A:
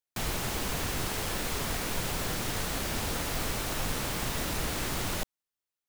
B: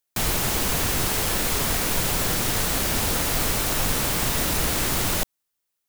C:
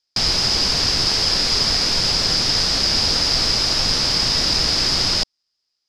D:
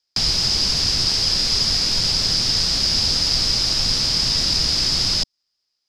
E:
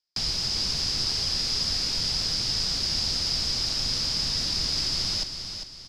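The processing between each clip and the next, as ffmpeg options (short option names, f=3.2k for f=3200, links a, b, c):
-af "highshelf=f=7.3k:g=6.5,volume=7dB"
-af "lowpass=f=5k:t=q:w=13"
-filter_complex "[0:a]acrossover=split=230|3000[a][b][c];[b]acompressor=threshold=-34dB:ratio=4[d];[a][d][c]amix=inputs=3:normalize=0"
-af "aecho=1:1:400|800|1200|1600:0.398|0.155|0.0606|0.0236,volume=-8.5dB"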